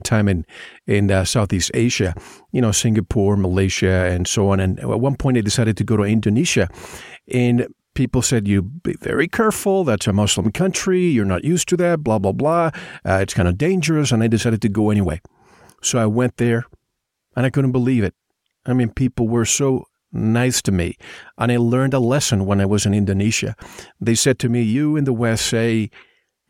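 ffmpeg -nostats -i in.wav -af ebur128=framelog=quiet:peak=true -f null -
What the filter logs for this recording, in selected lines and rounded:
Integrated loudness:
  I:         -18.4 LUFS
  Threshold: -28.8 LUFS
Loudness range:
  LRA:         2.4 LU
  Threshold: -38.8 LUFS
  LRA low:   -20.2 LUFS
  LRA high:  -17.9 LUFS
True peak:
  Peak:       -3.7 dBFS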